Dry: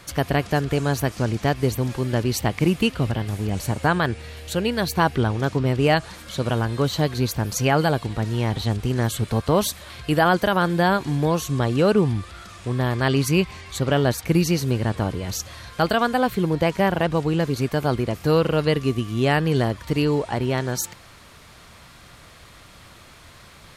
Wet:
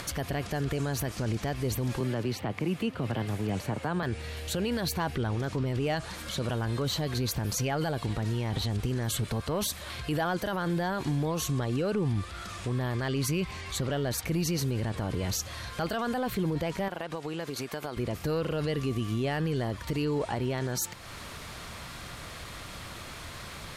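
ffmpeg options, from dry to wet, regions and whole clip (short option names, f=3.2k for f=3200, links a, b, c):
-filter_complex "[0:a]asettb=1/sr,asplit=3[a][b][c];[a]atrim=end=2.004[d];[b]atrim=start=2:end=4.03,asetpts=PTS-STARTPTS,afade=t=in:d=0.004:c=qsin,afade=t=out:st=2.026:d=0.004:c=qsin,highpass=f=86:w=0.5412,highpass=f=86:w=1.3066,acrossover=split=200|1200|3200[e][f][g][h];[e]acompressor=threshold=-31dB:ratio=3[i];[f]acompressor=threshold=-24dB:ratio=3[j];[g]acompressor=threshold=-38dB:ratio=3[k];[h]acompressor=threshold=-50dB:ratio=3[l];[i][j][k][l]amix=inputs=4:normalize=0[m];[c]atrim=start=4.026[n];[d][m]acrossfade=d=0.004:c1=hsin:c2=qsin[o];[o][n]acrossfade=d=0.004:c1=qsin:c2=hsin,asettb=1/sr,asplit=3[p][q][r];[p]atrim=end=16.884[s];[q]atrim=start=16.88:end=17.97,asetpts=PTS-STARTPTS,afade=t=in:d=0.004:c=qsin,afade=t=out:st=1.086:d=0.004:c=qsin,highpass=f=500:p=1,acompressor=threshold=-29dB:ratio=12:attack=3.2:release=140:knee=1:detection=peak[t];[r]atrim=start=17.966[u];[s][t]acrossfade=d=0.004:c1=hsin:c2=qsin[v];[v][u]acrossfade=d=0.004:c1=qsin:c2=hsin,acontrast=85,alimiter=limit=-13dB:level=0:latency=1:release=25,acompressor=mode=upward:threshold=-25dB:ratio=2.5,volume=-8.5dB"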